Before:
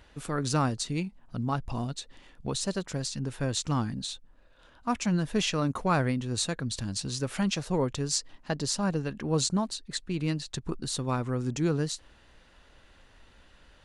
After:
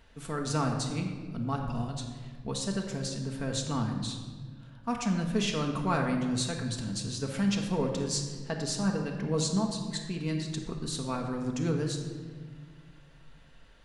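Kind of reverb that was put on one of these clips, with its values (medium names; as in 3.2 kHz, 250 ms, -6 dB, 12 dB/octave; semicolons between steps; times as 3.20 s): simulated room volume 1800 m³, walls mixed, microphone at 1.6 m; trim -4.5 dB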